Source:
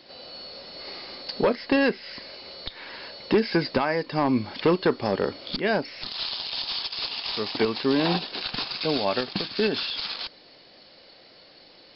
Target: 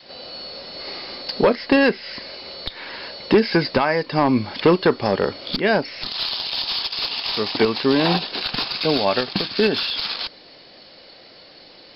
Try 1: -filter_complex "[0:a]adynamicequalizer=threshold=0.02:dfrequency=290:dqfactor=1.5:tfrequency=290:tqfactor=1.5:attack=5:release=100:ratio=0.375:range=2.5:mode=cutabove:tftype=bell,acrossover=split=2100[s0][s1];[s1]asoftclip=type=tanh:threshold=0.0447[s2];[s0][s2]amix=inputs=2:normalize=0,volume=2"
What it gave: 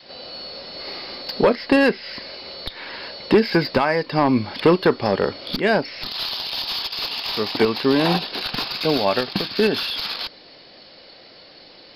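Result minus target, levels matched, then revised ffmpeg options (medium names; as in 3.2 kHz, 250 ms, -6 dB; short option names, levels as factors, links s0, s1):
saturation: distortion +15 dB
-filter_complex "[0:a]adynamicequalizer=threshold=0.02:dfrequency=290:dqfactor=1.5:tfrequency=290:tqfactor=1.5:attack=5:release=100:ratio=0.375:range=2.5:mode=cutabove:tftype=bell,acrossover=split=2100[s0][s1];[s1]asoftclip=type=tanh:threshold=0.141[s2];[s0][s2]amix=inputs=2:normalize=0,volume=2"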